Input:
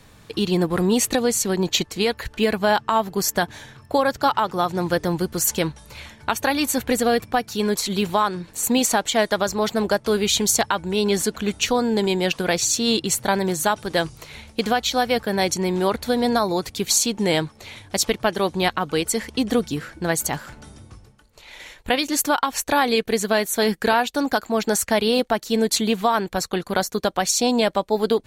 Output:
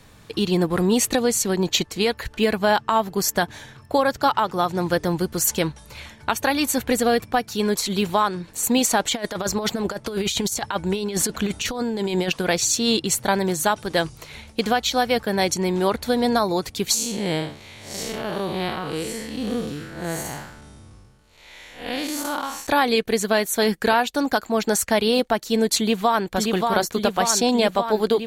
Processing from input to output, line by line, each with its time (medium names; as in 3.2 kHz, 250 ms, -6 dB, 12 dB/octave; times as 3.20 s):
8.99–12.30 s: compressor with a negative ratio -23 dBFS, ratio -0.5
16.94–22.67 s: spectral blur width 179 ms
25.78–26.33 s: echo throw 580 ms, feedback 75%, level -3.5 dB